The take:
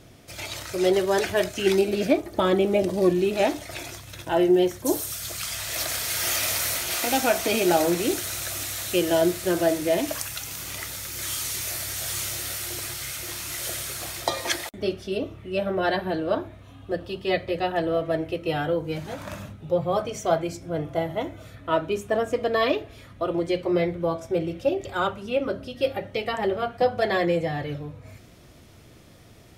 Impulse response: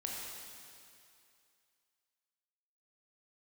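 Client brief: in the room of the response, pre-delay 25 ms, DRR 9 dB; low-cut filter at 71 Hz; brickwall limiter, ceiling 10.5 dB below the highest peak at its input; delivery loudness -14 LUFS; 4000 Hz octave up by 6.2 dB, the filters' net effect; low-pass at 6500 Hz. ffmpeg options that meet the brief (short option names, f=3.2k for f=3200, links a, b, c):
-filter_complex "[0:a]highpass=71,lowpass=6.5k,equalizer=f=4k:t=o:g=8.5,alimiter=limit=-15dB:level=0:latency=1,asplit=2[a][b];[1:a]atrim=start_sample=2205,adelay=25[c];[b][c]afir=irnorm=-1:irlink=0,volume=-10dB[d];[a][d]amix=inputs=2:normalize=0,volume=12dB"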